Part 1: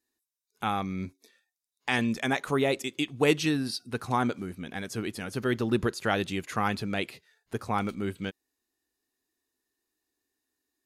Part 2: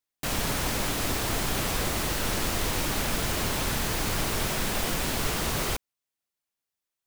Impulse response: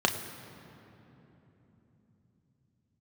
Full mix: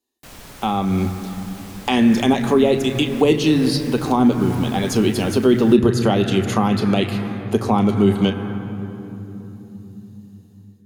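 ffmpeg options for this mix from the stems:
-filter_complex "[0:a]dynaudnorm=framelen=300:gausssize=5:maxgain=15.5dB,volume=-0.5dB,asplit=2[link_01][link_02];[link_02]volume=-11dB[link_03];[1:a]volume=-12dB[link_04];[2:a]atrim=start_sample=2205[link_05];[link_03][link_05]afir=irnorm=-1:irlink=0[link_06];[link_01][link_04][link_06]amix=inputs=3:normalize=0,acrossover=split=340[link_07][link_08];[link_08]acompressor=threshold=-21dB:ratio=3[link_09];[link_07][link_09]amix=inputs=2:normalize=0"

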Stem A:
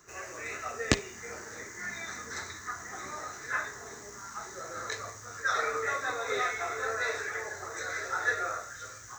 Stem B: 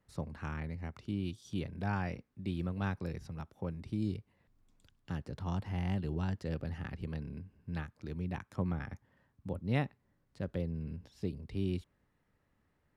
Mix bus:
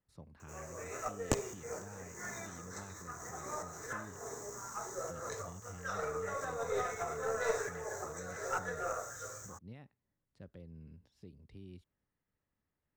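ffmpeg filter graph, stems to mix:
ffmpeg -i stem1.wav -i stem2.wav -filter_complex "[0:a]equalizer=frequency=125:width_type=o:width=1:gain=7,equalizer=frequency=500:width_type=o:width=1:gain=9,equalizer=frequency=1000:width_type=o:width=1:gain=5,equalizer=frequency=2000:width_type=o:width=1:gain=-5,equalizer=frequency=4000:width_type=o:width=1:gain=-7,equalizer=frequency=8000:width_type=o:width=1:gain=6,equalizer=frequency=16000:width_type=o:width=1:gain=9,adelay=400,volume=-1.5dB[link_01];[1:a]alimiter=level_in=5dB:limit=-24dB:level=0:latency=1:release=182,volume=-5dB,volume=-9dB,asplit=2[link_02][link_03];[link_03]apad=whole_len=422822[link_04];[link_01][link_04]sidechaincompress=threshold=-51dB:ratio=8:attack=20:release=171[link_05];[link_05][link_02]amix=inputs=2:normalize=0,aeval=exprs='(tanh(5.01*val(0)+0.65)-tanh(0.65))/5.01':channel_layout=same" out.wav

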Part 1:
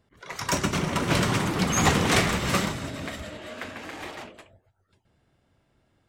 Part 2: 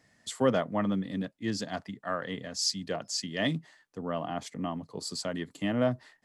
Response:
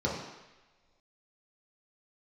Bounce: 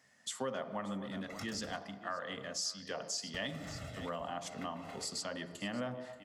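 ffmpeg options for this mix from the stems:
-filter_complex "[0:a]acompressor=threshold=-26dB:ratio=6,aecho=1:1:1.5:0.91,adelay=1000,volume=-15dB,asplit=3[link_01][link_02][link_03];[link_01]atrim=end=1.77,asetpts=PTS-STARTPTS,afade=type=out:start_time=1.766:duration=0.004:curve=hsin[link_04];[link_02]atrim=start=1.77:end=3.34,asetpts=PTS-STARTPTS,volume=0[link_05];[link_03]atrim=start=3.34,asetpts=PTS-STARTPTS,afade=type=in:duration=0.004:curve=hsin[link_06];[link_04][link_05][link_06]concat=n=3:v=0:a=1[link_07];[1:a]highpass=frequency=660:poles=1,volume=0.5dB,asplit=4[link_08][link_09][link_10][link_11];[link_09]volume=-17dB[link_12];[link_10]volume=-18.5dB[link_13];[link_11]apad=whole_len=312725[link_14];[link_07][link_14]sidechaincompress=threshold=-40dB:ratio=8:attack=22:release=265[link_15];[2:a]atrim=start_sample=2205[link_16];[link_12][link_16]afir=irnorm=-1:irlink=0[link_17];[link_13]aecho=0:1:580:1[link_18];[link_15][link_08][link_17][link_18]amix=inputs=4:normalize=0,equalizer=frequency=100:width_type=o:width=0.77:gain=3.5,acompressor=threshold=-36dB:ratio=4"

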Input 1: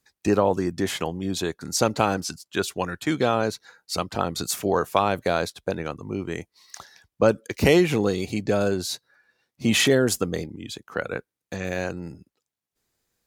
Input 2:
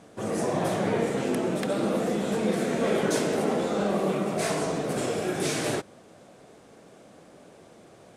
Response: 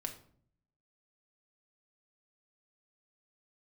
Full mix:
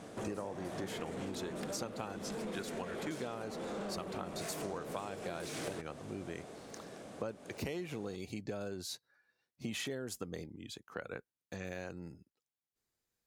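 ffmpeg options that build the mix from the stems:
-filter_complex "[0:a]volume=-11.5dB[link_01];[1:a]acompressor=threshold=-34dB:ratio=8,asoftclip=type=tanh:threshold=-36.5dB,volume=2dB[link_02];[link_01][link_02]amix=inputs=2:normalize=0,acompressor=threshold=-37dB:ratio=6"

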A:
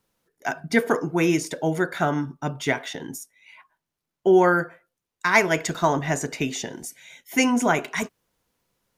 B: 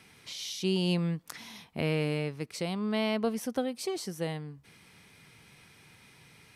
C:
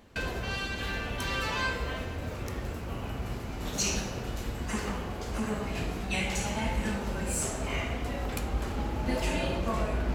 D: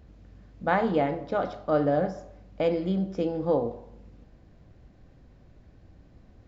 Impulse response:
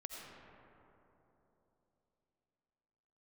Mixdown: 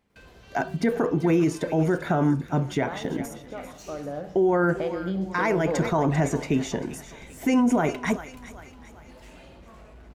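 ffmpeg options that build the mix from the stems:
-filter_complex "[0:a]adelay=100,volume=0dB,asplit=2[link_01][link_02];[link_02]volume=-19dB[link_03];[1:a]flanger=delay=3.4:depth=6:regen=-35:speed=0.91:shape=triangular,aeval=exprs='(mod(15*val(0)+1,2)-1)/15':channel_layout=same,volume=-17dB,asplit=2[link_04][link_05];[2:a]asoftclip=type=hard:threshold=-26.5dB,volume=-17dB[link_06];[3:a]acompressor=threshold=-25dB:ratio=6,adelay=2200,volume=1dB[link_07];[link_05]apad=whole_len=382360[link_08];[link_07][link_08]sidechaincompress=threshold=-55dB:ratio=8:attack=5.1:release=1220[link_09];[link_01][link_04]amix=inputs=2:normalize=0,tiltshelf=frequency=1300:gain=7,alimiter=limit=-8.5dB:level=0:latency=1:release=184,volume=0dB[link_10];[link_03]aecho=0:1:393|786|1179|1572|1965|2358|2751:1|0.47|0.221|0.104|0.0488|0.0229|0.0108[link_11];[link_06][link_09][link_10][link_11]amix=inputs=4:normalize=0,alimiter=limit=-14dB:level=0:latency=1:release=17"

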